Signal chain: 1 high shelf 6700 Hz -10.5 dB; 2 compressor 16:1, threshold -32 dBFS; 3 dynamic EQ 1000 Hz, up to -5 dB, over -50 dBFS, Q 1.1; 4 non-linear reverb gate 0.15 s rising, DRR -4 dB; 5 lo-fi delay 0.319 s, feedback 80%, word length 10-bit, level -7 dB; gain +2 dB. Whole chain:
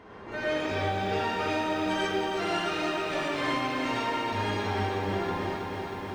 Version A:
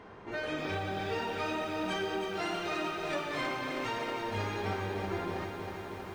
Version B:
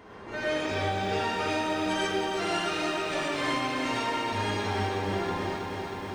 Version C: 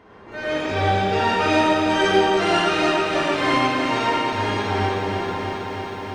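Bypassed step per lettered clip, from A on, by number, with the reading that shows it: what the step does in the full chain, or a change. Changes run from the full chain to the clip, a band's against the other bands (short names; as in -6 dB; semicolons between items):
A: 4, crest factor change +2.0 dB; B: 1, 8 kHz band +5.0 dB; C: 2, mean gain reduction 6.0 dB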